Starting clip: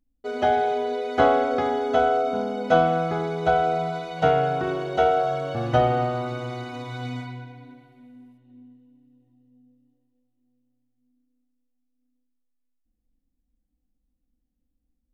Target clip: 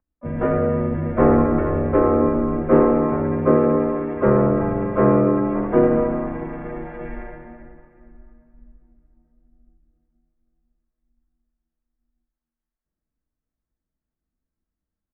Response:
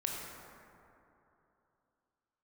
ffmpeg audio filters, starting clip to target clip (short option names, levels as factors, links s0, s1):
-filter_complex "[0:a]aecho=1:1:4.4:0.88,aeval=exprs='0.708*(cos(1*acos(clip(val(0)/0.708,-1,1)))-cos(1*PI/2))+0.0631*(cos(5*acos(clip(val(0)/0.708,-1,1)))-cos(5*PI/2))':c=same,bandreject=f=60:t=h:w=6,bandreject=f=120:t=h:w=6,bandreject=f=180:t=h:w=6,bandreject=f=240:t=h:w=6,bandreject=f=300:t=h:w=6,bandreject=f=360:t=h:w=6,bandreject=f=420:t=h:w=6,bandreject=f=480:t=h:w=6,asplit=4[s0][s1][s2][s3];[s1]asetrate=37084,aresample=44100,atempo=1.18921,volume=0.794[s4];[s2]asetrate=52444,aresample=44100,atempo=0.840896,volume=0.794[s5];[s3]asetrate=88200,aresample=44100,atempo=0.5,volume=0.251[s6];[s0][s4][s5][s6]amix=inputs=4:normalize=0,asplit=2[s7][s8];[1:a]atrim=start_sample=2205,adelay=105[s9];[s8][s9]afir=irnorm=-1:irlink=0,volume=0.224[s10];[s7][s10]amix=inputs=2:normalize=0,highpass=f=280:t=q:w=0.5412,highpass=f=280:t=q:w=1.307,lowpass=f=2100:t=q:w=0.5176,lowpass=f=2100:t=q:w=0.7071,lowpass=f=2100:t=q:w=1.932,afreqshift=-260,volume=0.596"